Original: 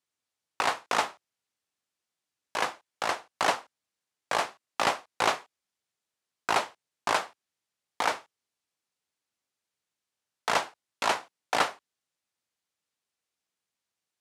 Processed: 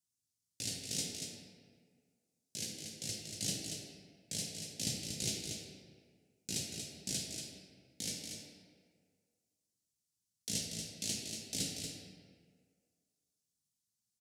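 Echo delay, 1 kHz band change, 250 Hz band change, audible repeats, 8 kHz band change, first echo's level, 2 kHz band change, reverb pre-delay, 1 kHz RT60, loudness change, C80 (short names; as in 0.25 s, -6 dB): 0.235 s, -36.5 dB, -1.5 dB, 1, +2.5 dB, -6.0 dB, -20.5 dB, 3 ms, 1.9 s, -9.5 dB, 1.0 dB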